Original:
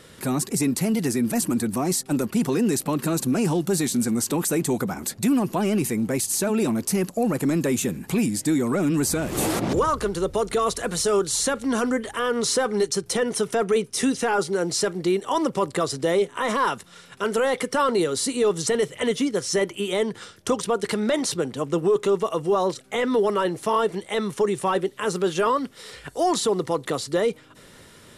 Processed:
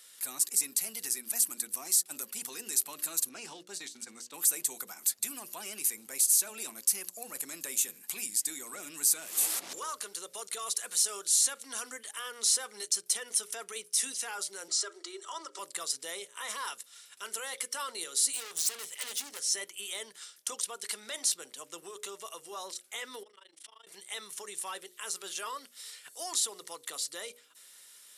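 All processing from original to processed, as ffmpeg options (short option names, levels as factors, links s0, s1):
-filter_complex "[0:a]asettb=1/sr,asplit=3[s0][s1][s2];[s0]atrim=end=3.294[s3];[s1]atrim=start=3.29:end=4.34,asetpts=PTS-STARTPTS,afade=t=in:d=0.004:c=qsin,afade=t=out:st=1.046:d=0.004:c=qsin,lowpass=4700,agate=range=0.316:threshold=0.0447:ratio=16:release=100:detection=peak[s4];[s2]atrim=start=4.336[s5];[s3][s4]acrossfade=d=0.004:c1=hsin:c2=qsin[s6];[s6][s5]acrossfade=d=0.004:c1=qsin:c2=hsin,asettb=1/sr,asplit=3[s7][s8][s9];[s7]atrim=end=14.684[s10];[s8]atrim=start=14.68:end=15.59,asetpts=PTS-STARTPTS,afade=t=in:d=0.004:c=qsin,afade=t=out:st=0.906:d=0.004:c=qsin,aecho=1:1:3.1:0.48,atrim=end_sample=40131,acompressor=threshold=0.0708:ratio=2:attack=3.2:release=140:knee=1:detection=peak,highpass=f=330:w=0.5412,highpass=f=330:w=1.3066,equalizer=f=400:t=q:w=4:g=9,equalizer=f=1300:t=q:w=4:g=10,equalizer=f=2500:t=q:w=4:g=-5,lowpass=f=8200:w=0.5412,lowpass=f=8200:w=1.3066[s11];[s9]atrim=start=15.586[s12];[s10][s11]acrossfade=d=0.004:c1=hsin:c2=qsin[s13];[s13][s12]acrossfade=d=0.004:c1=qsin:c2=hsin,asettb=1/sr,asplit=3[s14][s15][s16];[s14]atrim=end=18.334[s17];[s15]atrim=start=18.33:end=19.39,asetpts=PTS-STARTPTS,afade=t=in:d=0.004:c=qsin,afade=t=out:st=1.056:d=0.004:c=qsin,bandreject=f=60:t=h:w=6,bandreject=f=120:t=h:w=6,bandreject=f=180:t=h:w=6,bandreject=f=240:t=h:w=6,bandreject=f=300:t=h:w=6,bandreject=f=360:t=h:w=6,acontrast=88,aeval=exprs='(tanh(15.8*val(0)+0.6)-tanh(0.6))/15.8':c=same[s18];[s16]atrim=start=19.386[s19];[s17][s18]acrossfade=d=0.004:c1=hsin:c2=qsin[s20];[s20][s19]acrossfade=d=0.004:c1=qsin:c2=hsin,asettb=1/sr,asplit=3[s21][s22][s23];[s21]atrim=end=23.234[s24];[s22]atrim=start=23.23:end=23.87,asetpts=PTS-STARTPTS,afade=t=in:d=0.004:c=qsin,afade=t=out:st=0.636:d=0.004:c=qsin,highpass=220,equalizer=f=290:t=q:w=4:g=7,equalizer=f=2100:t=q:w=4:g=4,equalizer=f=3300:t=q:w=4:g=9,equalizer=f=6800:t=q:w=4:g=-6,lowpass=f=8700:w=0.5412,lowpass=f=8700:w=1.3066,acompressor=threshold=0.0251:ratio=20:attack=3.2:release=140:knee=1:detection=peak,tremolo=f=26:d=0.974[s25];[s23]atrim=start=23.866[s26];[s24][s25]acrossfade=d=0.004:c1=hsin:c2=qsin[s27];[s27][s26]acrossfade=d=0.004:c1=qsin:c2=hsin,highpass=f=210:p=1,aderivative,bandreject=f=60:t=h:w=6,bandreject=f=120:t=h:w=6,bandreject=f=180:t=h:w=6,bandreject=f=240:t=h:w=6,bandreject=f=300:t=h:w=6,bandreject=f=360:t=h:w=6,bandreject=f=420:t=h:w=6,bandreject=f=480:t=h:w=6,bandreject=f=540:t=h:w=6,bandreject=f=600:t=h:w=6"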